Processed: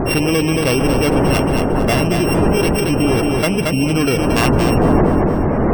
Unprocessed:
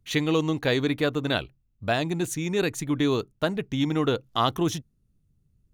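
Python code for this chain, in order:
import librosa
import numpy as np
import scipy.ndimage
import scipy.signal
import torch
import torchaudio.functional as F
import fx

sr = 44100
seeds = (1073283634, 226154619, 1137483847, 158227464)

y = np.r_[np.sort(x[:len(x) // 16 * 16].reshape(-1, 16), axis=1).ravel(), x[len(x) // 16 * 16:]]
y = fx.dmg_wind(y, sr, seeds[0], corner_hz=450.0, level_db=-22.0)
y = fx.spec_gate(y, sr, threshold_db=-30, keep='strong')
y = fx.echo_feedback(y, sr, ms=227, feedback_pct=37, wet_db=-7.5)
y = fx.env_flatten(y, sr, amount_pct=70)
y = F.gain(torch.from_numpy(y), -1.5).numpy()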